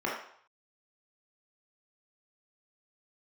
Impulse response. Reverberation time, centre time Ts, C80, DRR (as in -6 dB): 0.60 s, 46 ms, 6.5 dB, -4.0 dB